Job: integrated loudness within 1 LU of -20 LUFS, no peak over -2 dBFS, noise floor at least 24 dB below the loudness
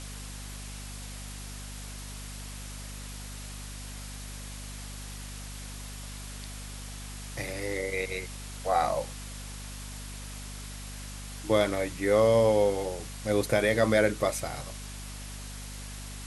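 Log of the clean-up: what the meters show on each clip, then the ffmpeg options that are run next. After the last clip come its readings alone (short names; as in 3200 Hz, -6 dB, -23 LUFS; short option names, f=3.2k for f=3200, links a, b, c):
hum 50 Hz; harmonics up to 250 Hz; hum level -39 dBFS; noise floor -41 dBFS; noise floor target -56 dBFS; loudness -31.5 LUFS; peak -10.5 dBFS; loudness target -20.0 LUFS
-> -af "bandreject=f=50:t=h:w=6,bandreject=f=100:t=h:w=6,bandreject=f=150:t=h:w=6,bandreject=f=200:t=h:w=6,bandreject=f=250:t=h:w=6"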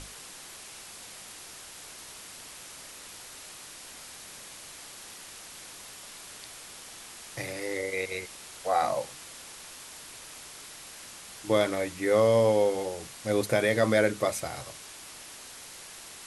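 hum none; noise floor -46 dBFS; noise floor target -52 dBFS
-> -af "afftdn=nr=6:nf=-46"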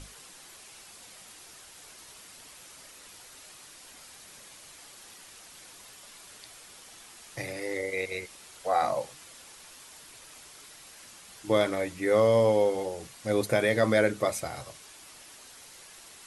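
noise floor -51 dBFS; noise floor target -52 dBFS
-> -af "afftdn=nr=6:nf=-51"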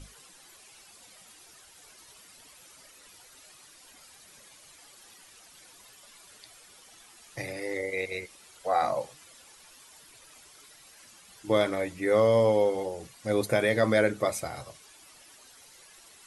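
noise floor -55 dBFS; loudness -27.5 LUFS; peak -11.0 dBFS; loudness target -20.0 LUFS
-> -af "volume=7.5dB"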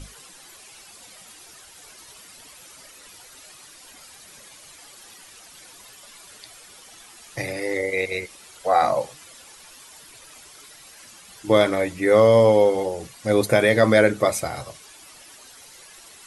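loudness -20.0 LUFS; peak -3.5 dBFS; noise floor -47 dBFS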